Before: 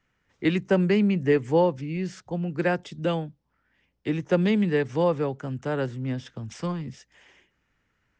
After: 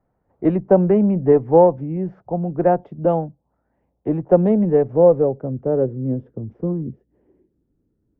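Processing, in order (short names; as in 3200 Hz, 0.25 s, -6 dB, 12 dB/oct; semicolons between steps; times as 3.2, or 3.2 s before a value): added harmonics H 6 -29 dB, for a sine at -9.5 dBFS; low-pass sweep 730 Hz -> 340 Hz, 4.27–7.26; mismatched tape noise reduction decoder only; gain +4.5 dB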